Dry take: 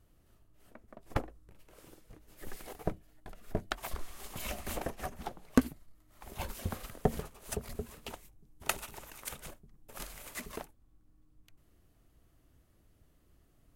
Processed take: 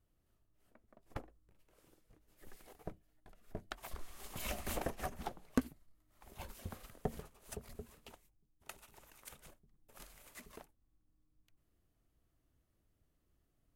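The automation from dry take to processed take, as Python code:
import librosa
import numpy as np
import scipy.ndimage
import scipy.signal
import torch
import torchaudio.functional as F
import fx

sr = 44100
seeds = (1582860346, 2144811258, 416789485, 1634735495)

y = fx.gain(x, sr, db=fx.line((3.47, -12.0), (4.52, -1.5), (5.25, -1.5), (5.66, -9.5), (7.88, -9.5), (8.66, -19.0), (9.04, -11.5)))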